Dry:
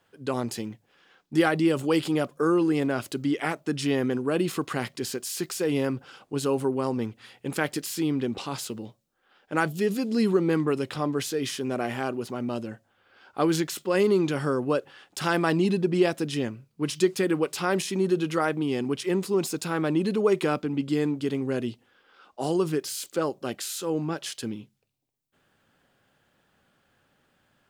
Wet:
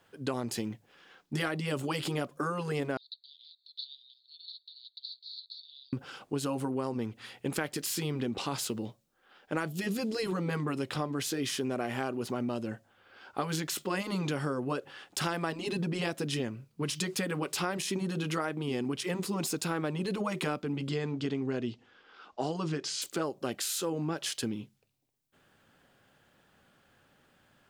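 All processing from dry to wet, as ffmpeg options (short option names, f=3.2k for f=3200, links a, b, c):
-filter_complex "[0:a]asettb=1/sr,asplit=3[a][b][c];[a]atrim=end=2.974[d];[b]atrim=start=2.97:end=5.93,asetpts=PTS-STARTPTS,afade=t=in:d=0.004:c=qsin,afade=t=out:st=2.956:d=0.004:c=qsin,asuperpass=centerf=4000:order=8:qfactor=4.4,acompressor=mode=upward:threshold=-49dB:ratio=2.5:attack=3.2:release=140:knee=2.83:detection=peak[e];[c]atrim=start=5.926[f];[d][e]acrossfade=d=0.004:c1=hsin:c2=qsin[g];[g][f]acrossfade=d=0.004:c1=qsin:c2=hsin,asettb=1/sr,asplit=3[h][i][j];[h]atrim=end=20.894[k];[i]atrim=start=20.89:end=23.02,asetpts=PTS-STARTPTS,afade=t=in:d=0.004:c=qsin,afade=t=out:st=2.126:d=0.004:c=qsin,lowpass=f=6.8k:w=0.5412,lowpass=f=6.8k:w=1.3066,bandreject=f=540:w=16[l];[j]atrim=start=23.016[m];[k][l]acrossfade=d=0.004:c1=hsin:c2=qsin[n];[n][m]acrossfade=d=0.004:c1=qsin:c2=hsin,afftfilt=real='re*lt(hypot(re,im),0.501)':imag='im*lt(hypot(re,im),0.501)':win_size=1024:overlap=0.75,acompressor=threshold=-31dB:ratio=6,volume=2dB"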